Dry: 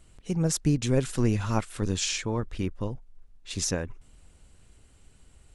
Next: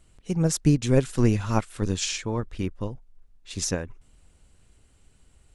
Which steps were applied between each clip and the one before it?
upward expander 1.5:1, over -34 dBFS; gain +5 dB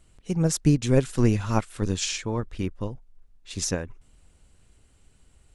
nothing audible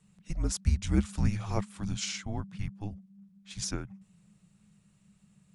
frequency shift -210 Hz; gain -6.5 dB

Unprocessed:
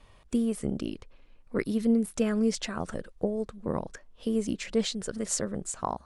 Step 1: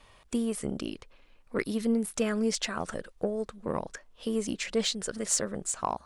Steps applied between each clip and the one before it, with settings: low shelf 430 Hz -8.5 dB; in parallel at -4.5 dB: soft clip -25.5 dBFS, distortion -16 dB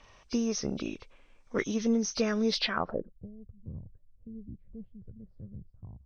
nonlinear frequency compression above 2100 Hz 1.5:1; low-pass sweep 7600 Hz -> 100 Hz, 2.56–3.19

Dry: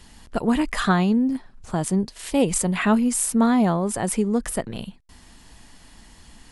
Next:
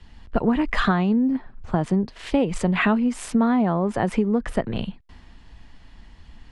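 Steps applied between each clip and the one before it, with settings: LPF 2800 Hz 12 dB/oct; compressor 6:1, threshold -25 dBFS, peak gain reduction 11 dB; three-band expander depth 40%; gain +7.5 dB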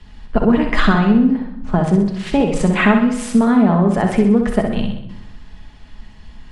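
on a send: flutter echo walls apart 10.9 m, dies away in 0.62 s; on the sum: shoebox room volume 2300 m³, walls furnished, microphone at 1.4 m; gain +4 dB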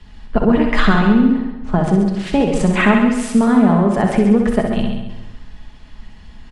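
feedback echo 0.136 s, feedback 37%, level -9 dB

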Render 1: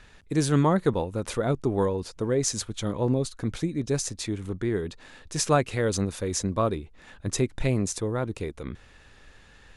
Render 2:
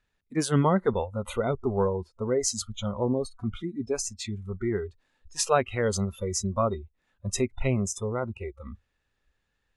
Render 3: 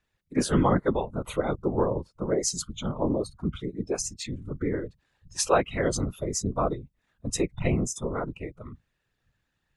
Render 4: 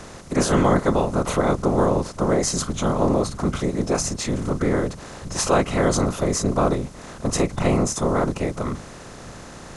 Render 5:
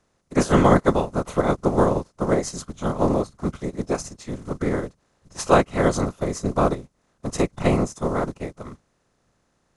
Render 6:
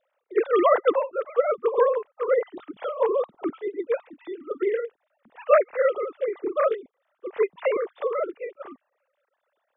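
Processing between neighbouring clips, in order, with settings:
spectral noise reduction 24 dB
whisperiser
per-bin compression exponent 0.4
upward expander 2.5:1, over -37 dBFS; gain +4.5 dB
sine-wave speech; gain -2.5 dB

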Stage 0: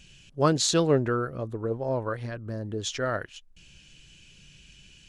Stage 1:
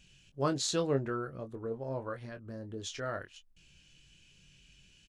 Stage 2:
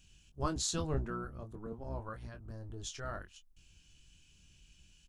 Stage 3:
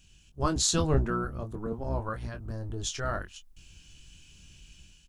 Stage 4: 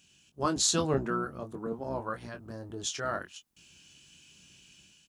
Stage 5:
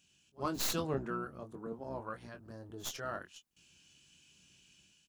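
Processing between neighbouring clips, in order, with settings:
doubler 22 ms -8 dB; gain -9 dB
octaver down 1 oct, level -1 dB; graphic EQ 125/250/500/2000/4000 Hz -6/-4/-10/-8/-4 dB; gain +1.5 dB
AGC gain up to 6 dB; gain +3.5 dB
HPF 180 Hz 12 dB/oct
tracing distortion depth 0.2 ms; pre-echo 56 ms -23 dB; gain -7 dB

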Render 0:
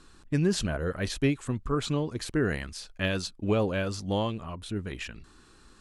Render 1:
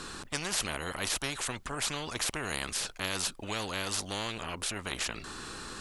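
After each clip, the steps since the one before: spectral compressor 4:1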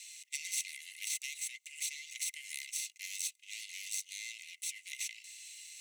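minimum comb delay 0.5 ms; rippled Chebyshev high-pass 2000 Hz, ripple 9 dB; gain +1.5 dB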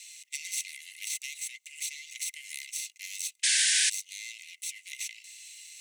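painted sound noise, 3.43–3.9, 1500–9900 Hz -27 dBFS; gain +2.5 dB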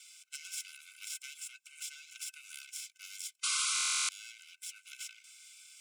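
band-swap scrambler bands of 500 Hz; stuck buffer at 3.74, samples 1024, times 14; gain -7.5 dB

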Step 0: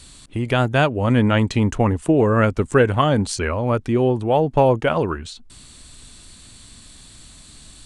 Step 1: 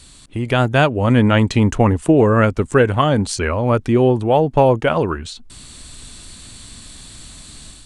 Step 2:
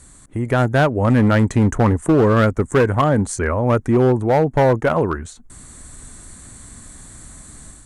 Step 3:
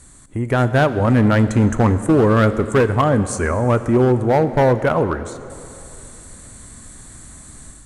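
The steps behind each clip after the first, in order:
AGC gain up to 6 dB
band shelf 3600 Hz -14 dB 1.3 oct; one-sided clip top -11 dBFS, bottom -7.5 dBFS
plate-style reverb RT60 2.9 s, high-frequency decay 0.85×, DRR 11.5 dB

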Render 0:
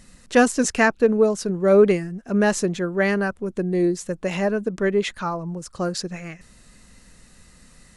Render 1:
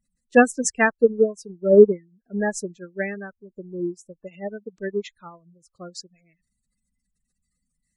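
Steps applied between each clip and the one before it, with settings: high shelf 3300 Hz +9 dB; spectral gate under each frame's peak -15 dB strong; upward expander 2.5:1, over -31 dBFS; gain +4.5 dB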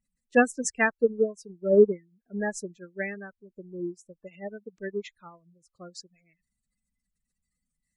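bell 2200 Hz +5 dB 0.52 oct; gain -6 dB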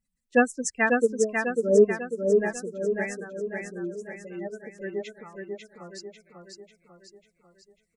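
feedback echo 0.545 s, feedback 50%, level -4 dB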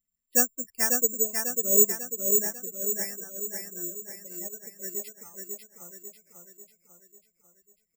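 careless resampling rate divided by 6×, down filtered, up zero stuff; gain -10 dB

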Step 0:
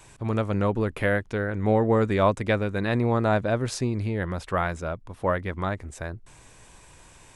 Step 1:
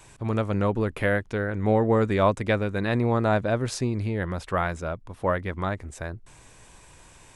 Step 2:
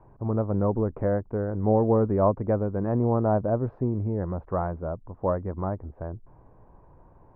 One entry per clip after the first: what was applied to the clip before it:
nothing audible
LPF 1000 Hz 24 dB/oct

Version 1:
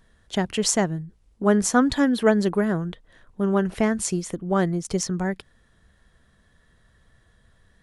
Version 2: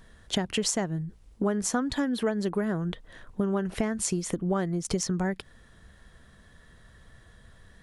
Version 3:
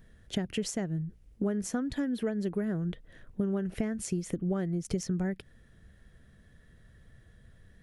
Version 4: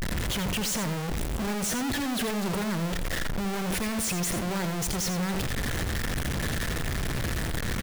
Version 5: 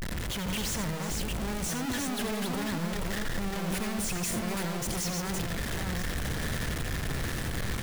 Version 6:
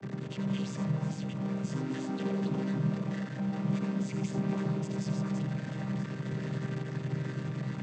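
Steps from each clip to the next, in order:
compressor 8:1, threshold -30 dBFS, peak gain reduction 17 dB; gain +5.5 dB
graphic EQ 125/1000/4000/8000 Hz +3/-11/-6/-6 dB; gain -3 dB
infinite clipping; echo 85 ms -8.5 dB; gain +5 dB
reverse delay 0.464 s, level -3 dB; gain -4.5 dB
chord vocoder minor triad, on C3; gain +1.5 dB

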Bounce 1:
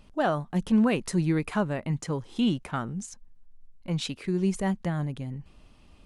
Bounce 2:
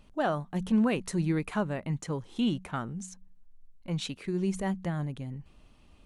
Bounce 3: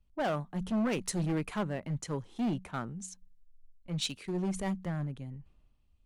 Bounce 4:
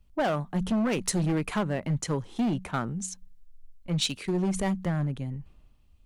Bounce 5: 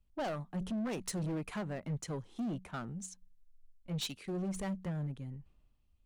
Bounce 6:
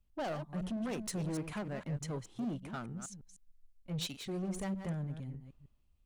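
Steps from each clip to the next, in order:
notch 5000 Hz, Q 14; de-hum 93.02 Hz, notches 2; gain -3 dB
hard clip -27.5 dBFS, distortion -10 dB; three-band expander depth 70%; gain -1 dB
compressor 3:1, threshold -32 dBFS, peak gain reduction 5 dB; gain +8.5 dB
soft clip -25.5 dBFS, distortion -12 dB; upward expander 1.5:1, over -40 dBFS; gain -5.5 dB
reverse delay 0.153 s, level -9 dB; gain -1 dB

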